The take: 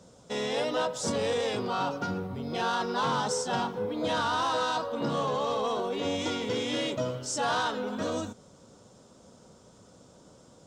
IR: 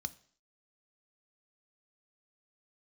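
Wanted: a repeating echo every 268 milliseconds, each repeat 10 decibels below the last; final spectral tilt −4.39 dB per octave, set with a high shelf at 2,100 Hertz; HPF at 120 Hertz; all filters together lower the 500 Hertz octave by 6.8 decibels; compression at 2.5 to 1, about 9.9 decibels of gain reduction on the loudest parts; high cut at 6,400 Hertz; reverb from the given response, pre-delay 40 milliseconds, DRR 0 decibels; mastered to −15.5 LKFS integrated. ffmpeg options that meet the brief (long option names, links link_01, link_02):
-filter_complex "[0:a]highpass=120,lowpass=6400,equalizer=frequency=500:width_type=o:gain=-7.5,highshelf=frequency=2100:gain=-6,acompressor=threshold=-44dB:ratio=2.5,aecho=1:1:268|536|804|1072:0.316|0.101|0.0324|0.0104,asplit=2[link_01][link_02];[1:a]atrim=start_sample=2205,adelay=40[link_03];[link_02][link_03]afir=irnorm=-1:irlink=0,volume=1.5dB[link_04];[link_01][link_04]amix=inputs=2:normalize=0,volume=23.5dB"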